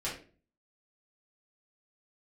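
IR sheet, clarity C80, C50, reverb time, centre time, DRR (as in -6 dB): 11.5 dB, 6.0 dB, 0.40 s, 31 ms, -8.0 dB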